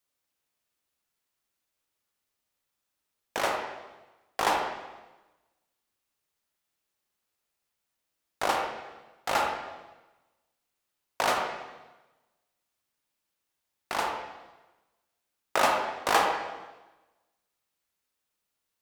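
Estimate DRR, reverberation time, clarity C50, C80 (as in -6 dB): 1.5 dB, 1.1 s, 3.0 dB, 5.5 dB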